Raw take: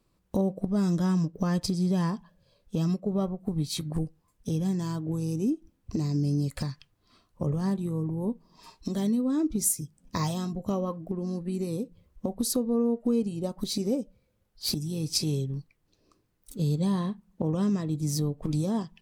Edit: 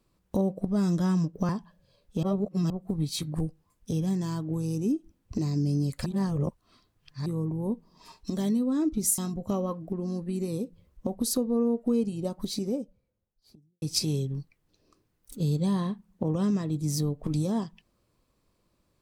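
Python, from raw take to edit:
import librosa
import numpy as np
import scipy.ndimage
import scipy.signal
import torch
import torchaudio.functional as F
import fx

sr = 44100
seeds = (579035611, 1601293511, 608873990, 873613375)

y = fx.studio_fade_out(x, sr, start_s=13.38, length_s=1.63)
y = fx.edit(y, sr, fx.cut(start_s=1.49, length_s=0.58),
    fx.reverse_span(start_s=2.81, length_s=0.47),
    fx.reverse_span(start_s=6.64, length_s=1.2),
    fx.cut(start_s=9.76, length_s=0.61), tone=tone)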